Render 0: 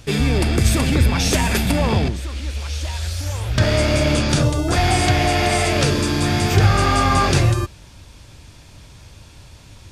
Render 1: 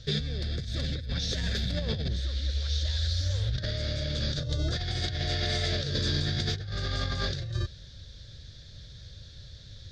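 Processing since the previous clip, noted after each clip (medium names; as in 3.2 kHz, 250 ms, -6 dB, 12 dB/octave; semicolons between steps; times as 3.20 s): FFT filter 140 Hz 0 dB, 300 Hz -12 dB, 530 Hz -2 dB, 930 Hz -22 dB, 1.7 kHz -1 dB, 2.6 kHz -14 dB, 3.7 kHz +8 dB, 6.3 kHz -5 dB, 9.2 kHz -24 dB; compressor with a negative ratio -23 dBFS, ratio -1; trim -7 dB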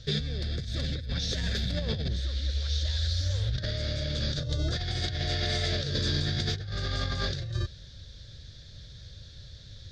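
no audible change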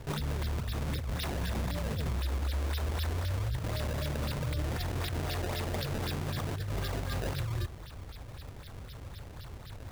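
peak limiter -26.5 dBFS, peak gain reduction 9.5 dB; decimation with a swept rate 23×, swing 160% 3.9 Hz; trim +1.5 dB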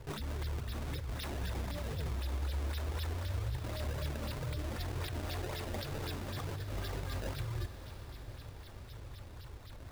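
flange 2 Hz, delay 1.9 ms, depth 1.8 ms, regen -39%; echo that smears into a reverb 627 ms, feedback 60%, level -12.5 dB; trim -1.5 dB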